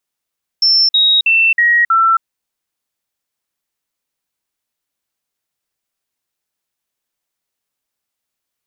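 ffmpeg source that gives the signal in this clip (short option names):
-f lavfi -i "aevalsrc='0.398*clip(min(mod(t,0.32),0.27-mod(t,0.32))/0.005,0,1)*sin(2*PI*5360*pow(2,-floor(t/0.32)/2)*mod(t,0.32))':d=1.6:s=44100"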